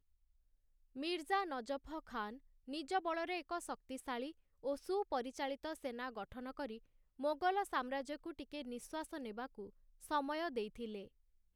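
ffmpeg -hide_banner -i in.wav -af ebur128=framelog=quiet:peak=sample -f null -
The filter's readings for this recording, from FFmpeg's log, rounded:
Integrated loudness:
  I:         -42.1 LUFS
  Threshold: -52.4 LUFS
Loudness range:
  LRA:         2.3 LU
  Threshold: -62.4 LUFS
  LRA low:   -43.8 LUFS
  LRA high:  -41.5 LUFS
Sample peak:
  Peak:      -23.9 dBFS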